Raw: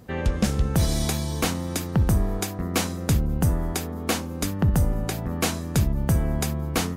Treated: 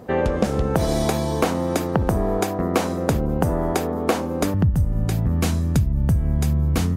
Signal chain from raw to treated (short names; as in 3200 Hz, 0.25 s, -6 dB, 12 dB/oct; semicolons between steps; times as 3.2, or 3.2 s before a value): bell 580 Hz +14 dB 2.9 oct, from 4.54 s 82 Hz; compressor 12:1, threshold -14 dBFS, peak gain reduction 11.5 dB; gain -1 dB